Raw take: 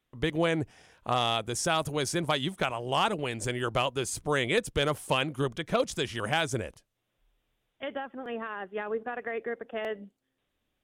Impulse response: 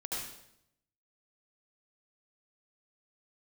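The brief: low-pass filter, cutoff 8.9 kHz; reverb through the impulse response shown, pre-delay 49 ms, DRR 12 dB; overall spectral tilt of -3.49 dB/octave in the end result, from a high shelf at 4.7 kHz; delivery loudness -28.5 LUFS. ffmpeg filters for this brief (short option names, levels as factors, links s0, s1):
-filter_complex "[0:a]lowpass=8900,highshelf=f=4700:g=-6.5,asplit=2[s0][s1];[1:a]atrim=start_sample=2205,adelay=49[s2];[s1][s2]afir=irnorm=-1:irlink=0,volume=0.188[s3];[s0][s3]amix=inputs=2:normalize=0,volume=1.26"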